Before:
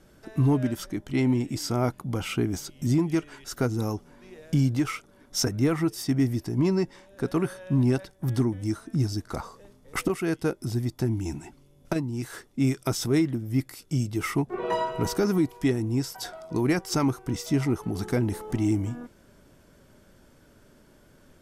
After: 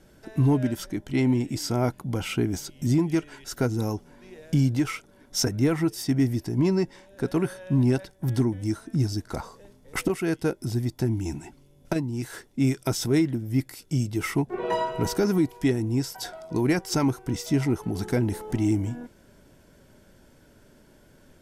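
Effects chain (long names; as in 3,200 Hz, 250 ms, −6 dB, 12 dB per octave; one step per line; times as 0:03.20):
notch filter 1,200 Hz, Q 7.4
level +1 dB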